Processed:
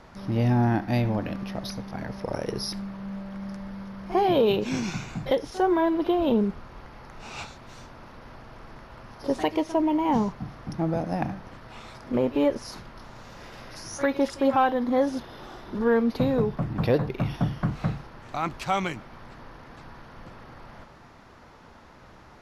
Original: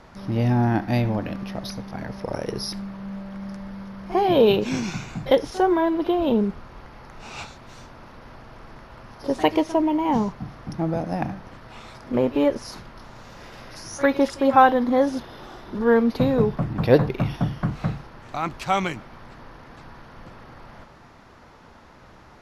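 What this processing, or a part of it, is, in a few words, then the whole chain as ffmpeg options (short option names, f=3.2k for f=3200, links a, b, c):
soft clipper into limiter: -af "asoftclip=type=tanh:threshold=-4.5dB,alimiter=limit=-11.5dB:level=0:latency=1:release=474,volume=-1.5dB"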